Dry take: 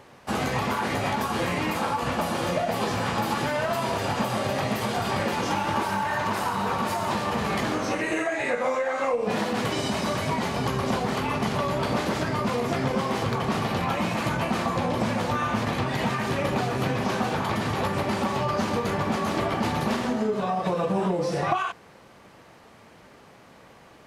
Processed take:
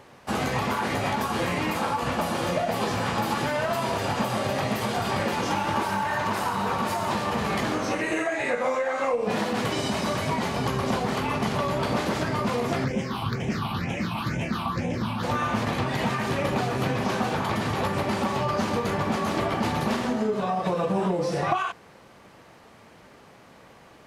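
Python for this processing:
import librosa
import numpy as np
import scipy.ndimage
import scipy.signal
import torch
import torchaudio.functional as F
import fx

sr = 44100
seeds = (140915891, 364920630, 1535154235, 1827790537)

y = fx.phaser_stages(x, sr, stages=6, low_hz=470.0, high_hz=1200.0, hz=2.1, feedback_pct=25, at=(12.84, 15.22), fade=0.02)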